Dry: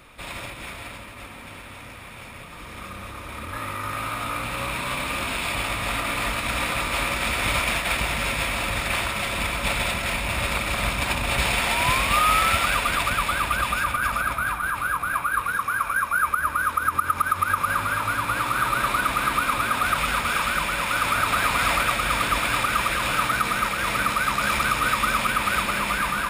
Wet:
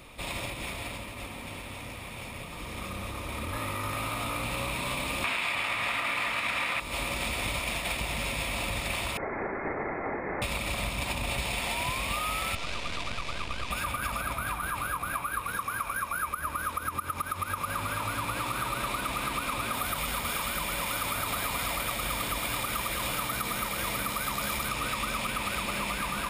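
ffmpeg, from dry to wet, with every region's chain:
ffmpeg -i in.wav -filter_complex "[0:a]asettb=1/sr,asplit=3[link_01][link_02][link_03];[link_01]atrim=end=5.244[link_04];[link_02]atrim=start=5.24:end=6.8,asetpts=PTS-STARTPTS,afade=type=in:duration=0.004:curve=qsin,afade=type=out:start_time=1.556:duration=0.004:curve=qsin,highpass=90,equalizer=frequency=1700:width_type=o:width=2.3:gain=15[link_05];[link_03]atrim=start=6.796[link_06];[link_04][link_05]acrossfade=duration=0.004:curve1=hsin:curve2=qsin[link_07];[link_07][link_06]acrossfade=duration=0.004:curve1=qsin:curve2=hsin,asettb=1/sr,asplit=3[link_08][link_09][link_10];[link_08]atrim=end=9.174[link_11];[link_09]atrim=start=9.17:end=10.42,asetpts=PTS-STARTPTS,afade=type=in:duration=0.004:curve=qsin,afade=type=out:start_time=1.246:duration=0.004:curve=qsin,highpass=740,lowpass=frequency=2300:width_type=q:width=0.5098,lowpass=frequency=2300:width_type=q:width=0.6013,lowpass=frequency=2300:width_type=q:width=0.9,lowpass=frequency=2300:width_type=q:width=2.563,afreqshift=-2700[link_12];[link_10]atrim=start=10.416[link_13];[link_11][link_12]acrossfade=duration=0.004:curve1=hsin:curve2=qsin[link_14];[link_14][link_13]acrossfade=duration=0.004:curve1=qsin:curve2=hsin,asettb=1/sr,asplit=3[link_15][link_16][link_17];[link_15]atrim=end=12.554[link_18];[link_16]atrim=start=12.55:end=13.71,asetpts=PTS-STARTPTS,afade=type=in:duration=0.004:curve=qsin,afade=type=out:start_time=1.156:duration=0.004:curve=qsin,aeval=exprs='max(val(0),0)':channel_layout=same,lowpass=6000,equalizer=frequency=830:width=6.4:gain=-4.5[link_19];[link_17]atrim=start=13.706[link_20];[link_18][link_19]acrossfade=duration=0.004:curve1=hsin:curve2=qsin[link_21];[link_21][link_20]acrossfade=duration=0.004:curve1=qsin:curve2=hsin,asettb=1/sr,asplit=3[link_22][link_23][link_24];[link_22]atrim=end=19.734[link_25];[link_23]atrim=start=19.73:end=24.69,asetpts=PTS-STARTPTS,afade=type=in:duration=0.004:curve=qsin,afade=type=out:start_time=4.956:duration=0.004:curve=qsin,equalizer=frequency=14000:width_type=o:width=0.68:gain=8.5,bandreject=frequency=2600:width=14[link_26];[link_24]atrim=start=24.686[link_27];[link_25][link_26]acrossfade=duration=0.004:curve1=hsin:curve2=qsin[link_28];[link_28][link_27]acrossfade=duration=0.004:curve1=qsin:curve2=hsin,equalizer=frequency=1500:width=2.3:gain=-9.5,acompressor=threshold=-30dB:ratio=6,volume=1.5dB" out.wav

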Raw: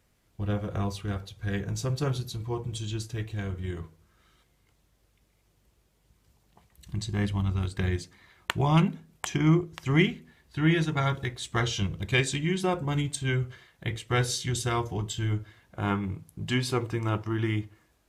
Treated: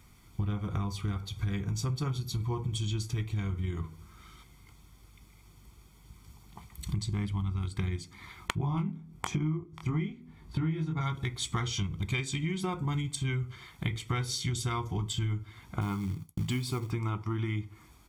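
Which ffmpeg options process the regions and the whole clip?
ffmpeg -i in.wav -filter_complex "[0:a]asettb=1/sr,asplit=3[link_01][link_02][link_03];[link_01]atrim=end=8.554[link_04];[link_02]atrim=start=8.55:end=11.01,asetpts=PTS-STARTPTS,afade=type=in:duration=0.004:curve=qsin,afade=type=out:start_time=2.456:duration=0.004:curve=qsin,tiltshelf=frequency=1200:gain=5.5,flanger=delay=19.5:depth=6.1:speed=1.1[link_05];[link_03]atrim=start=11.006[link_06];[link_04][link_05]acrossfade=duration=0.004:curve1=hsin:curve2=qsin[link_07];[link_07][link_06]acrossfade=duration=0.004:curve1=qsin:curve2=hsin,asettb=1/sr,asplit=3[link_08][link_09][link_10];[link_08]atrim=end=15.814[link_11];[link_09]atrim=start=15.81:end=16.91,asetpts=PTS-STARTPTS,afade=type=in:duration=0.004:curve=qsin,afade=type=out:start_time=1.096:duration=0.004:curve=qsin,agate=range=-33dB:threshold=-47dB:ratio=3:release=100:detection=peak,equalizer=frequency=1600:width=0.48:gain=-4.5,acrusher=bits=5:mode=log:mix=0:aa=0.000001[link_12];[link_10]atrim=start=16.906[link_13];[link_11][link_12]acrossfade=duration=0.004:curve1=hsin:curve2=qsin[link_14];[link_14][link_13]acrossfade=duration=0.004:curve1=qsin:curve2=hsin,aecho=1:1:0.9:0.68,acompressor=threshold=-37dB:ratio=10,volume=8dB" out.wav

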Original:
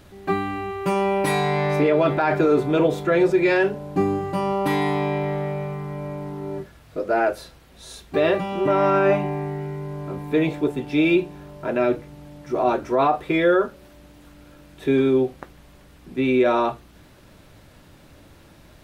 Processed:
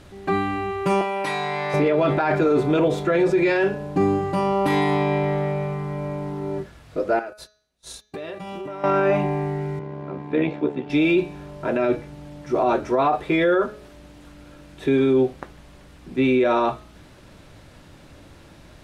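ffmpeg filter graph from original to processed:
ffmpeg -i in.wav -filter_complex "[0:a]asettb=1/sr,asplit=3[link_01][link_02][link_03];[link_01]atrim=end=1.014[link_04];[link_02]atrim=start=1.01:end=1.74,asetpts=PTS-STARTPTS,afade=type=in:duration=0.004:curve=qsin,afade=type=out:start_time=0.726:duration=0.004:curve=qsin,highpass=frequency=150:poles=1,acrossover=split=630|6900[link_05][link_06][link_07];[link_05]acompressor=threshold=-35dB:ratio=4[link_08];[link_06]acompressor=threshold=-27dB:ratio=4[link_09];[link_07]acompressor=threshold=-52dB:ratio=4[link_10];[link_08][link_09][link_10]amix=inputs=3:normalize=0[link_11];[link_03]atrim=start=1.736[link_12];[link_04][link_11]acrossfade=duration=0.004:curve1=hsin:curve2=qsin[link_13];[link_13][link_12]acrossfade=duration=0.004:curve1=qsin:curve2=hsin,asettb=1/sr,asplit=3[link_14][link_15][link_16];[link_14]atrim=end=7.194[link_17];[link_15]atrim=start=7.19:end=8.84,asetpts=PTS-STARTPTS,afade=type=in:duration=0.004:curve=qsin,afade=type=out:start_time=1.646:duration=0.004:curve=qsin,aemphasis=mode=production:type=cd,acompressor=threshold=-32dB:ratio=10:attack=3.2:release=140:knee=1:detection=peak,agate=range=-31dB:threshold=-38dB:ratio=16:release=100:detection=peak[link_18];[link_16]atrim=start=8.836[link_19];[link_17][link_18]acrossfade=duration=0.004:curve1=hsin:curve2=qsin[link_20];[link_20][link_19]acrossfade=duration=0.004:curve1=qsin:curve2=hsin,asettb=1/sr,asplit=3[link_21][link_22][link_23];[link_21]atrim=end=9.794[link_24];[link_22]atrim=start=9.79:end=10.9,asetpts=PTS-STARTPTS,afade=type=in:duration=0.004:curve=qsin,afade=type=out:start_time=1.106:duration=0.004:curve=qsin,tremolo=f=68:d=0.621,highpass=140,lowpass=3100[link_25];[link_23]atrim=start=10.896[link_26];[link_24][link_25]acrossfade=duration=0.004:curve1=hsin:curve2=qsin[link_27];[link_27][link_26]acrossfade=duration=0.004:curve1=qsin:curve2=hsin,lowpass=10000,bandreject=frequency=211.3:width_type=h:width=4,bandreject=frequency=422.6:width_type=h:width=4,bandreject=frequency=633.9:width_type=h:width=4,bandreject=frequency=845.2:width_type=h:width=4,bandreject=frequency=1056.5:width_type=h:width=4,bandreject=frequency=1267.8:width_type=h:width=4,bandreject=frequency=1479.1:width_type=h:width=4,bandreject=frequency=1690.4:width_type=h:width=4,bandreject=frequency=1901.7:width_type=h:width=4,bandreject=frequency=2113:width_type=h:width=4,bandreject=frequency=2324.3:width_type=h:width=4,bandreject=frequency=2535.6:width_type=h:width=4,bandreject=frequency=2746.9:width_type=h:width=4,bandreject=frequency=2958.2:width_type=h:width=4,bandreject=frequency=3169.5:width_type=h:width=4,bandreject=frequency=3380.8:width_type=h:width=4,bandreject=frequency=3592.1:width_type=h:width=4,bandreject=frequency=3803.4:width_type=h:width=4,bandreject=frequency=4014.7:width_type=h:width=4,bandreject=frequency=4226:width_type=h:width=4,bandreject=frequency=4437.3:width_type=h:width=4,bandreject=frequency=4648.6:width_type=h:width=4,bandreject=frequency=4859.9:width_type=h:width=4,bandreject=frequency=5071.2:width_type=h:width=4,bandreject=frequency=5282.5:width_type=h:width=4,bandreject=frequency=5493.8:width_type=h:width=4,bandreject=frequency=5705.1:width_type=h:width=4,bandreject=frequency=5916.4:width_type=h:width=4,bandreject=frequency=6127.7:width_type=h:width=4,bandreject=frequency=6339:width_type=h:width=4,bandreject=frequency=6550.3:width_type=h:width=4,alimiter=limit=-14dB:level=0:latency=1:release=16,volume=2.5dB" out.wav

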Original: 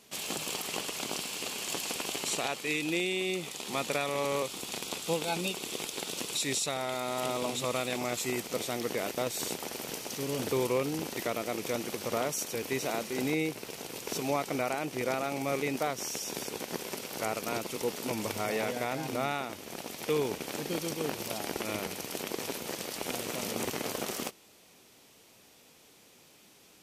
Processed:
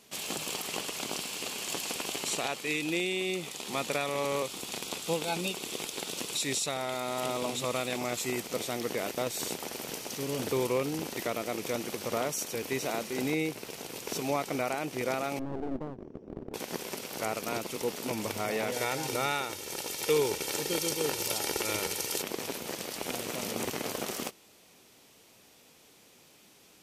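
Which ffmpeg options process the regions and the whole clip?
ffmpeg -i in.wav -filter_complex "[0:a]asettb=1/sr,asplit=3[link_01][link_02][link_03];[link_01]atrim=end=15.394[link_04];[link_02]atrim=start=15.39:end=16.54,asetpts=PTS-STARTPTS,afade=type=in:duration=0.004:curve=qsin,afade=type=out:start_time=1.146:duration=0.004:curve=qsin,lowpass=frequency=340:width_type=q:width=1.6,aeval=exprs='clip(val(0),-1,0.00631)':channel_layout=same[link_05];[link_03]atrim=start=16.536[link_06];[link_04][link_05]acrossfade=duration=0.004:curve1=hsin:curve2=qsin[link_07];[link_07][link_06]acrossfade=duration=0.004:curve1=qsin:curve2=hsin,asettb=1/sr,asplit=3[link_08][link_09][link_10];[link_08]atrim=end=18.724[link_11];[link_09]atrim=start=18.72:end=22.22,asetpts=PTS-STARTPTS,afade=type=in:duration=0.004:curve=qsin,afade=type=out:start_time=3.496:duration=0.004:curve=qsin,equalizer=frequency=8100:width_type=o:width=2.6:gain=7.5,aecho=1:1:2.2:0.5,atrim=end_sample=154350[link_12];[link_10]atrim=start=22.216[link_13];[link_11][link_12]acrossfade=duration=0.004:curve1=hsin:curve2=qsin[link_14];[link_14][link_13]acrossfade=duration=0.004:curve1=qsin:curve2=hsin" out.wav

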